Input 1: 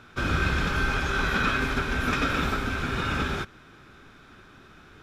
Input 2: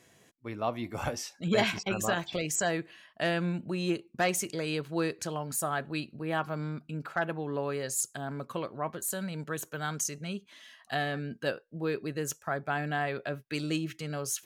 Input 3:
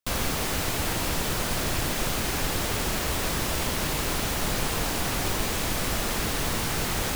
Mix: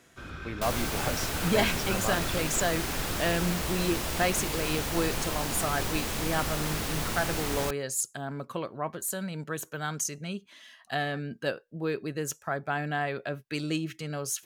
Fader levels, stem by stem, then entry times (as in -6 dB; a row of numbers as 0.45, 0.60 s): -16.0, +1.0, -4.5 dB; 0.00, 0.00, 0.55 s